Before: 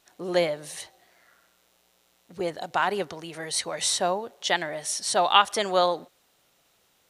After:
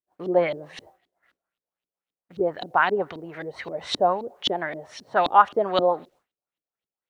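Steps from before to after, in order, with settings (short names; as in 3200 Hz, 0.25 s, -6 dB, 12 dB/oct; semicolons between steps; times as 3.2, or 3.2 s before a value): LFO low-pass saw up 3.8 Hz 270–3800 Hz; requantised 12-bit, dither none; expander -48 dBFS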